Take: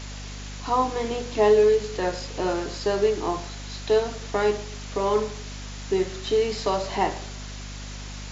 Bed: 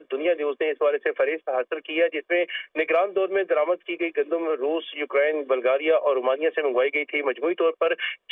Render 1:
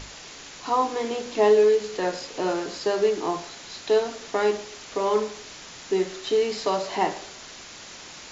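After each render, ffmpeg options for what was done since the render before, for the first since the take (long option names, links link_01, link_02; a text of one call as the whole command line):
ffmpeg -i in.wav -af "bandreject=frequency=50:width_type=h:width=6,bandreject=frequency=100:width_type=h:width=6,bandreject=frequency=150:width_type=h:width=6,bandreject=frequency=200:width_type=h:width=6,bandreject=frequency=250:width_type=h:width=6" out.wav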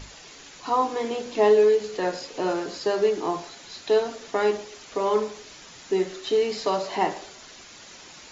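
ffmpeg -i in.wav -af "afftdn=noise_reduction=6:noise_floor=-43" out.wav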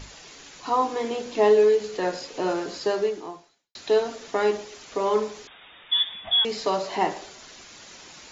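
ffmpeg -i in.wav -filter_complex "[0:a]asettb=1/sr,asplit=3[link_01][link_02][link_03];[link_01]atrim=end=5.474[link_04];[link_02]atrim=start=5.47:end=6.45,asetpts=PTS-STARTPTS,afade=type=in:duration=0.004:curve=qsin,afade=type=out:start_time=0.976:duration=0.004:curve=qsin,lowpass=frequency=3200:width_type=q:width=0.5098,lowpass=frequency=3200:width_type=q:width=0.6013,lowpass=frequency=3200:width_type=q:width=0.9,lowpass=frequency=3200:width_type=q:width=2.563,afreqshift=-3800[link_05];[link_03]atrim=start=6.446[link_06];[link_04][link_05]acrossfade=duration=0.004:curve1=hsin:curve2=qsin[link_07];[link_07][link_06]acrossfade=duration=0.004:curve1=qsin:curve2=hsin,asplit=2[link_08][link_09];[link_08]atrim=end=3.75,asetpts=PTS-STARTPTS,afade=type=out:start_time=2.91:duration=0.84:curve=qua[link_10];[link_09]atrim=start=3.75,asetpts=PTS-STARTPTS,afade=type=in:duration=0.004:curve=hsin[link_11];[link_10][link_11]concat=n=2:v=0:a=1" out.wav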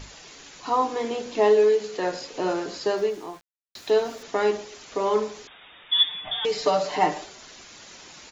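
ffmpeg -i in.wav -filter_complex "[0:a]asettb=1/sr,asplit=3[link_01][link_02][link_03];[link_01]atrim=end=1.404[link_04];[link_02]atrim=start=1.4:end=2.11,asetpts=PTS-STARTPTS,afade=type=in:duration=0.004:curve=qsin,afade=type=out:start_time=0.706:duration=0.004:curve=qsin,lowshelf=frequency=94:gain=-11[link_05];[link_03]atrim=start=2.106[link_06];[link_04][link_05]acrossfade=duration=0.004:curve1=hsin:curve2=qsin[link_07];[link_07][link_06]acrossfade=duration=0.004:curve1=qsin:curve2=hsin,asettb=1/sr,asplit=3[link_08][link_09][link_10];[link_08]atrim=end=2.974[link_11];[link_09]atrim=start=2.97:end=4.23,asetpts=PTS-STARTPTS,afade=type=in:duration=0.004:curve=qsin,afade=type=out:start_time=1.256:duration=0.004:curve=qsin,aeval=exprs='val(0)*gte(abs(val(0)),0.00501)':channel_layout=same[link_12];[link_10]atrim=start=4.226[link_13];[link_11][link_12]acrossfade=duration=0.004:curve1=hsin:curve2=qsin[link_14];[link_14][link_13]acrossfade=duration=0.004:curve1=qsin:curve2=hsin,asplit=3[link_15][link_16][link_17];[link_15]afade=type=out:start_time=5.98:duration=0.02[link_18];[link_16]aecho=1:1:6.7:0.83,afade=type=in:start_time=5.98:duration=0.02,afade=type=out:start_time=7.23:duration=0.02[link_19];[link_17]afade=type=in:start_time=7.23:duration=0.02[link_20];[link_18][link_19][link_20]amix=inputs=3:normalize=0" out.wav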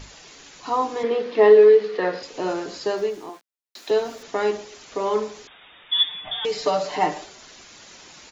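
ffmpeg -i in.wav -filter_complex "[0:a]asettb=1/sr,asplit=3[link_01][link_02][link_03];[link_01]atrim=end=1.034[link_04];[link_02]atrim=start=1.03:end=2.23,asetpts=PTS-STARTPTS,afade=type=in:duration=0.004:curve=qsin,afade=type=out:start_time=1.196:duration=0.004:curve=qsin,highpass=190,equalizer=frequency=190:width_type=q:width=4:gain=7,equalizer=frequency=460:width_type=q:width=4:gain=9,equalizer=frequency=1200:width_type=q:width=4:gain=6,equalizer=frequency=1900:width_type=q:width=4:gain=7,lowpass=frequency=4600:width=0.5412,lowpass=frequency=4600:width=1.3066[link_05];[link_03]atrim=start=2.226[link_06];[link_04][link_05]acrossfade=duration=0.004:curve1=hsin:curve2=qsin[link_07];[link_07][link_06]acrossfade=duration=0.004:curve1=qsin:curve2=hsin,asettb=1/sr,asplit=3[link_08][link_09][link_10];[link_08]atrim=end=3.294[link_11];[link_09]atrim=start=3.29:end=3.91,asetpts=PTS-STARTPTS,afade=type=in:duration=0.004:curve=qsin,afade=type=out:start_time=0.616:duration=0.004:curve=qsin,highpass=frequency=230:width=0.5412,highpass=frequency=230:width=1.3066[link_12];[link_10]atrim=start=3.906[link_13];[link_11][link_12]acrossfade=duration=0.004:curve1=hsin:curve2=qsin[link_14];[link_14][link_13]acrossfade=duration=0.004:curve1=qsin:curve2=hsin" out.wav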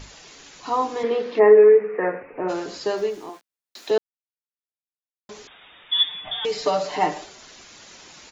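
ffmpeg -i in.wav -filter_complex "[0:a]asplit=3[link_01][link_02][link_03];[link_01]afade=type=out:start_time=1.38:duration=0.02[link_04];[link_02]asuperstop=centerf=5400:order=20:qfactor=0.69,afade=type=in:start_time=1.38:duration=0.02,afade=type=out:start_time=2.48:duration=0.02[link_05];[link_03]afade=type=in:start_time=2.48:duration=0.02[link_06];[link_04][link_05][link_06]amix=inputs=3:normalize=0,asplit=3[link_07][link_08][link_09];[link_07]atrim=end=3.98,asetpts=PTS-STARTPTS,afade=type=out:start_time=3.976:duration=0.004:curve=hsin[link_10];[link_08]atrim=start=3.98:end=5.29,asetpts=PTS-STARTPTS,volume=0[link_11];[link_09]atrim=start=5.29,asetpts=PTS-STARTPTS,afade=type=in:duration=0.004:curve=hsin[link_12];[link_10][link_11][link_12]concat=n=3:v=0:a=1" out.wav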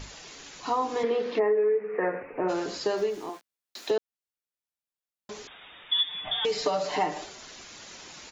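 ffmpeg -i in.wav -af "acompressor=threshold=-23dB:ratio=5" out.wav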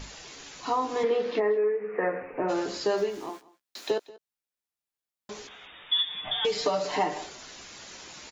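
ffmpeg -i in.wav -filter_complex "[0:a]asplit=2[link_01][link_02];[link_02]adelay=15,volume=-10dB[link_03];[link_01][link_03]amix=inputs=2:normalize=0,aecho=1:1:186:0.0891" out.wav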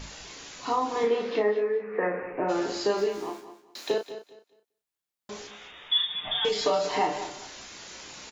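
ffmpeg -i in.wav -filter_complex "[0:a]asplit=2[link_01][link_02];[link_02]adelay=34,volume=-5.5dB[link_03];[link_01][link_03]amix=inputs=2:normalize=0,aecho=1:1:206|412|618:0.224|0.0537|0.0129" out.wav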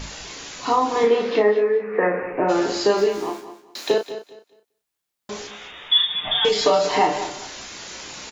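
ffmpeg -i in.wav -af "volume=7.5dB" out.wav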